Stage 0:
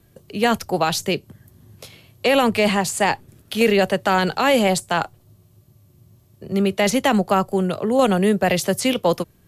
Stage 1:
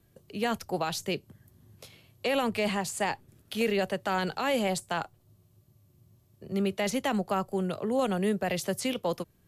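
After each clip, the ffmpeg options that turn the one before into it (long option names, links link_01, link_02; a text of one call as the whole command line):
ffmpeg -i in.wav -af "alimiter=limit=-9.5dB:level=0:latency=1:release=346,volume=-9dB" out.wav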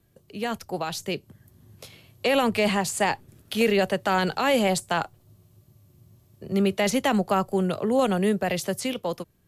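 ffmpeg -i in.wav -af "dynaudnorm=framelen=420:gausssize=7:maxgain=6dB" out.wav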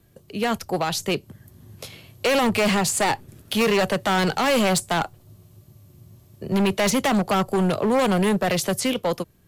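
ffmpeg -i in.wav -af "asoftclip=type=hard:threshold=-23.5dB,volume=6.5dB" out.wav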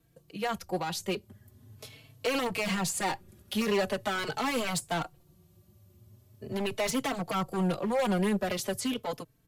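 ffmpeg -i in.wav -filter_complex "[0:a]asplit=2[link_01][link_02];[link_02]adelay=4,afreqshift=0.42[link_03];[link_01][link_03]amix=inputs=2:normalize=1,volume=-6dB" out.wav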